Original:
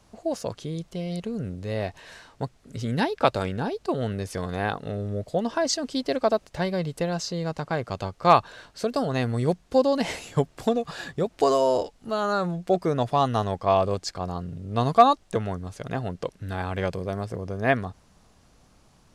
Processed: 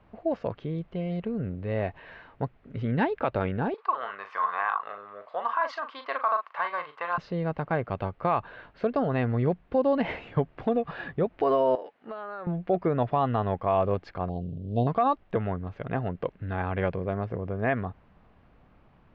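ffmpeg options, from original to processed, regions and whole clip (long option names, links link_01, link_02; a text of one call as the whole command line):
ffmpeg -i in.wav -filter_complex "[0:a]asettb=1/sr,asplit=3[link_01][link_02][link_03];[link_01]atrim=end=3.744[link_04];[link_02]atrim=start=3.74:end=7.18,asetpts=PTS-STARTPTS,afade=type=in:duration=0.004:curve=qsin,afade=type=out:start_time=3.436:duration=0.004:curve=qsin,highpass=frequency=1100:width_type=q:width=7,asplit=2[link_05][link_06];[link_06]adelay=40,volume=-9dB[link_07];[link_05][link_07]amix=inputs=2:normalize=0,atrim=end_sample=151704[link_08];[link_03]atrim=start=7.176[link_09];[link_04][link_08]acrossfade=duration=0.004:curve1=hsin:curve2=qsin[link_10];[link_10][link_09]acrossfade=duration=0.004:curve1=qsin:curve2=hsin,asettb=1/sr,asplit=3[link_11][link_12][link_13];[link_11]atrim=end=11.754[link_14];[link_12]atrim=start=11.75:end=12.47,asetpts=PTS-STARTPTS,afade=type=in:duration=0.004:curve=qsin,afade=type=out:start_time=0.716:duration=0.004:curve=qsin,highpass=340,equalizer=frequency=1700:width=3.6:gain=4.5,acompressor=threshold=-33dB:ratio=8:attack=3.2:release=140:knee=1:detection=peak[link_15];[link_13]atrim=start=12.466[link_16];[link_14][link_15]acrossfade=duration=0.004:curve1=hsin:curve2=qsin[link_17];[link_17][link_16]acrossfade=duration=0.004:curve1=qsin:curve2=hsin,asettb=1/sr,asplit=3[link_18][link_19][link_20];[link_18]atrim=end=14.294[link_21];[link_19]atrim=start=14.29:end=14.87,asetpts=PTS-STARTPTS,afade=type=in:duration=0.004:curve=qsin,afade=type=out:start_time=0.576:duration=0.004:curve=qsin,acrusher=bits=7:mode=log:mix=0:aa=0.000001,asuperstop=centerf=1500:order=8:qfactor=0.63[link_22];[link_20]atrim=start=14.866[link_23];[link_21][link_22]acrossfade=duration=0.004:curve1=hsin:curve2=qsin[link_24];[link_24][link_23]acrossfade=duration=0.004:curve1=qsin:curve2=hsin,lowpass=frequency=2600:width=0.5412,lowpass=frequency=2600:width=1.3066,alimiter=limit=-15dB:level=0:latency=1:release=81" out.wav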